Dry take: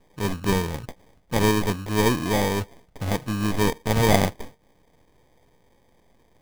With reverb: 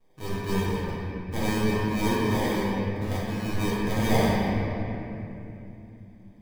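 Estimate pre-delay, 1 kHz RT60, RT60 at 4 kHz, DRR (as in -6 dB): 6 ms, 2.6 s, 2.0 s, -9.5 dB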